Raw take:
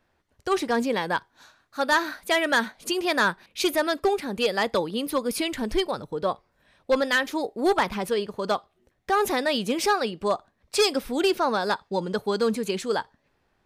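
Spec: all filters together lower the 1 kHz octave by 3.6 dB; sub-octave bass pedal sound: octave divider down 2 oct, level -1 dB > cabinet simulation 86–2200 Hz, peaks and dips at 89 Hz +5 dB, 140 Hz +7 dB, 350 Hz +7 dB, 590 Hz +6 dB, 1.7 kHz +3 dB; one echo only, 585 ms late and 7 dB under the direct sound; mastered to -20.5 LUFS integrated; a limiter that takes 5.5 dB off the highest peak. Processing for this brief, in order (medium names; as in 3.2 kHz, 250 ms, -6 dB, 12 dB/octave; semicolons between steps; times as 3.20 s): peaking EQ 1 kHz -6 dB; peak limiter -19 dBFS; delay 585 ms -7 dB; octave divider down 2 oct, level -1 dB; cabinet simulation 86–2200 Hz, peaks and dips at 89 Hz +5 dB, 140 Hz +7 dB, 350 Hz +7 dB, 590 Hz +6 dB, 1.7 kHz +3 dB; trim +5.5 dB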